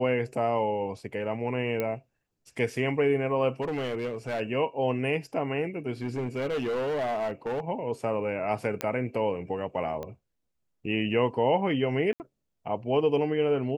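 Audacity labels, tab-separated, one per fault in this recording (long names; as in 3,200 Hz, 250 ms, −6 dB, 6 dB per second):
1.800000	1.800000	click −16 dBFS
3.610000	4.410000	clipping −26.5 dBFS
6.020000	7.600000	clipping −26 dBFS
8.810000	8.810000	click −13 dBFS
10.030000	10.030000	click −24 dBFS
12.130000	12.200000	drop-out 69 ms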